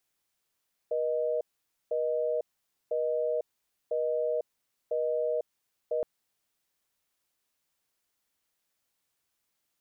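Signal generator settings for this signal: call progress tone busy tone, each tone -29 dBFS 5.12 s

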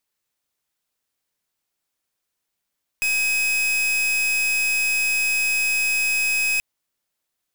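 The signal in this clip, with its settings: pulse 2540 Hz, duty 42% -21 dBFS 3.58 s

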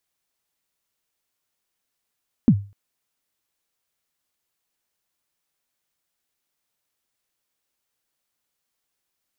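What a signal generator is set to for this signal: kick drum length 0.25 s, from 270 Hz, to 100 Hz, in 65 ms, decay 0.33 s, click off, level -6.5 dB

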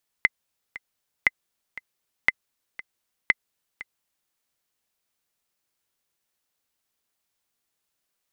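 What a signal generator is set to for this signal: metronome 118 bpm, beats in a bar 2, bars 4, 2050 Hz, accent 18.5 dB -4 dBFS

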